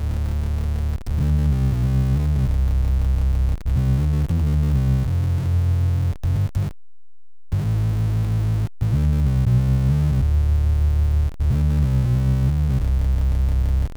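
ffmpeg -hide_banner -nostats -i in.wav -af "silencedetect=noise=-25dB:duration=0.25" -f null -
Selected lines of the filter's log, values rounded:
silence_start: 6.68
silence_end: 7.53 | silence_duration: 0.85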